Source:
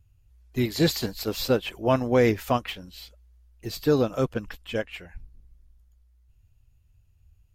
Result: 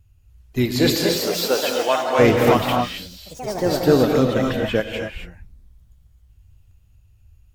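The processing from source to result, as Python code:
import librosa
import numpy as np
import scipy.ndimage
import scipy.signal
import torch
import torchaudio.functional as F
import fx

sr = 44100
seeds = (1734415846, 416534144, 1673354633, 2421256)

y = fx.highpass(x, sr, hz=fx.line((0.76, 250.0), (2.18, 760.0)), slope=12, at=(0.76, 2.18), fade=0.02)
y = fx.echo_pitch(y, sr, ms=364, semitones=3, count=3, db_per_echo=-6.0)
y = fx.rev_gated(y, sr, seeds[0], gate_ms=290, shape='rising', drr_db=2.0)
y = fx.band_squash(y, sr, depth_pct=70, at=(4.14, 4.8))
y = F.gain(torch.from_numpy(y), 5.0).numpy()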